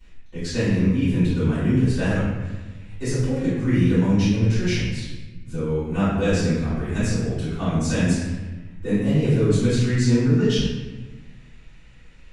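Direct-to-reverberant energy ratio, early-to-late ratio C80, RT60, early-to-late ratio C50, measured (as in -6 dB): -16.5 dB, 1.0 dB, 1.2 s, -2.0 dB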